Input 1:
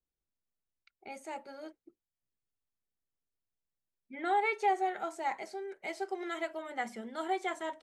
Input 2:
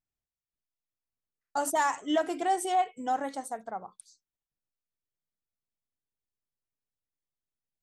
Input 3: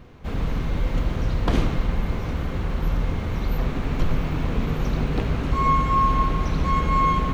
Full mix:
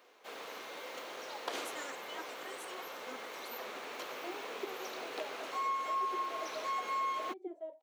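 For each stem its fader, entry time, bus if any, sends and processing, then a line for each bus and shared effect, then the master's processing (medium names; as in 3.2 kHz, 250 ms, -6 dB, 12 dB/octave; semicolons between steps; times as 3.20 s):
+0.5 dB, 0.00 s, no send, high-order bell 1.3 kHz -10 dB 1.3 oct; auto-wah 240–1500 Hz, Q 5.2, down, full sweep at -29.5 dBFS
-11.0 dB, 0.00 s, no send, spectral gate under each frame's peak -10 dB weak
-9.5 dB, 0.00 s, no send, high-pass 430 Hz 24 dB/octave; treble shelf 3.7 kHz +9.5 dB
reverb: none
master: compression 2.5:1, threshold -34 dBFS, peak gain reduction 6 dB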